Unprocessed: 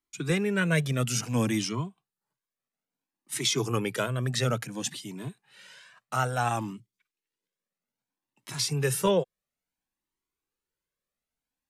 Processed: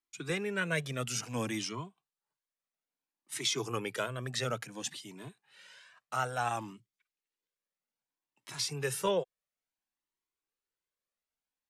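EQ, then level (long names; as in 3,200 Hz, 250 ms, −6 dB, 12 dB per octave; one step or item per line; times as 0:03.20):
low-shelf EQ 130 Hz −7 dB
parametric band 190 Hz −5 dB 1.7 octaves
high-shelf EQ 12,000 Hz −8.5 dB
−4.0 dB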